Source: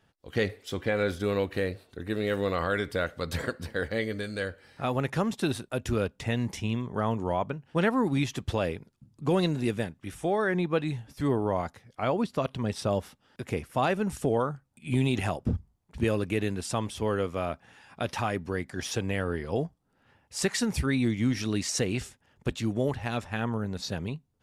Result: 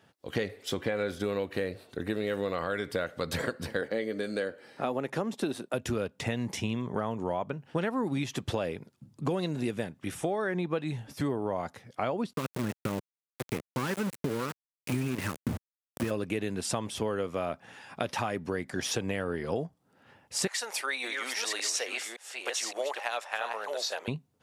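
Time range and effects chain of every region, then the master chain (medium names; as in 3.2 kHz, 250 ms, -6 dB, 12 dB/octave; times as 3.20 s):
3.81–5.74 s: high-pass 250 Hz + tilt shelf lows +4 dB, about 640 Hz
12.33–16.11 s: one-bit delta coder 64 kbps, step -43 dBFS + static phaser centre 1.7 kHz, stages 4 + small samples zeroed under -32.5 dBFS
20.47–24.08 s: chunks repeated in reverse 565 ms, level -6 dB + high-pass 590 Hz 24 dB/octave
whole clip: high-pass 120 Hz; peaking EQ 570 Hz +2 dB; compression 5:1, threshold -33 dBFS; trim +5 dB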